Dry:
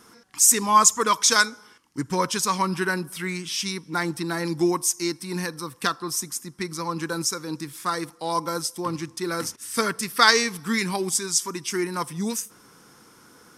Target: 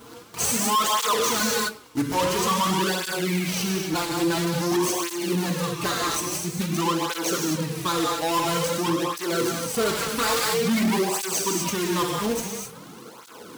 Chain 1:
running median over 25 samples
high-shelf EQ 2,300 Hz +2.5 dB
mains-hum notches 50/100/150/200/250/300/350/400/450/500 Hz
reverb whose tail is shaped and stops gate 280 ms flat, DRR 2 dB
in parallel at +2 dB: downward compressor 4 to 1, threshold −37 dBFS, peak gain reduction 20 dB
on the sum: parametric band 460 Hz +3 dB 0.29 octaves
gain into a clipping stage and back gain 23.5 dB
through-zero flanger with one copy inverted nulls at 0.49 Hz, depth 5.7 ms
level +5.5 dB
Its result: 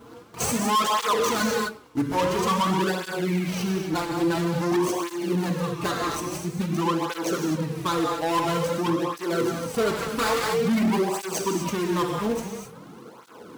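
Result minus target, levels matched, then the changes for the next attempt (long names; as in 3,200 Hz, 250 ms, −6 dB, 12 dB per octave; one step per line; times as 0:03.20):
4,000 Hz band −4.0 dB
change: high-shelf EQ 2,300 Hz +14 dB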